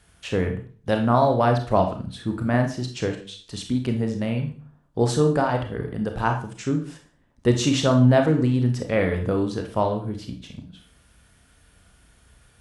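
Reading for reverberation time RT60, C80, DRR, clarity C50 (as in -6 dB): 0.40 s, 13.0 dB, 4.0 dB, 8.0 dB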